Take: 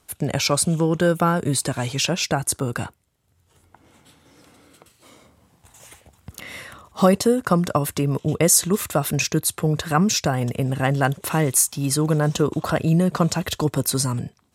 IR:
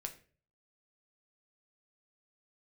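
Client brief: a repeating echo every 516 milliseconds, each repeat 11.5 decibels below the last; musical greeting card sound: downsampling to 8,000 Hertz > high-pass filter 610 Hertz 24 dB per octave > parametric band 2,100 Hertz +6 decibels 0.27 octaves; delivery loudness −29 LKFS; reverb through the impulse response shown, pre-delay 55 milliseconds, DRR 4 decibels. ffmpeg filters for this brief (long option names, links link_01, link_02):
-filter_complex "[0:a]aecho=1:1:516|1032|1548:0.266|0.0718|0.0194,asplit=2[link_01][link_02];[1:a]atrim=start_sample=2205,adelay=55[link_03];[link_02][link_03]afir=irnorm=-1:irlink=0,volume=-1.5dB[link_04];[link_01][link_04]amix=inputs=2:normalize=0,aresample=8000,aresample=44100,highpass=frequency=610:width=0.5412,highpass=frequency=610:width=1.3066,equalizer=frequency=2100:width_type=o:width=0.27:gain=6,volume=-2dB"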